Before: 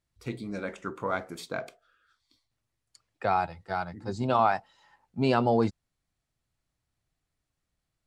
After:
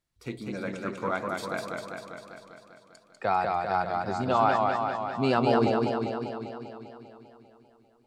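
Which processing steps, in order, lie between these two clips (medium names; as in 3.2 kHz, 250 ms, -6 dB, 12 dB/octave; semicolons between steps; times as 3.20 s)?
peaking EQ 71 Hz -6 dB 1.7 oct; modulated delay 198 ms, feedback 67%, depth 85 cents, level -3 dB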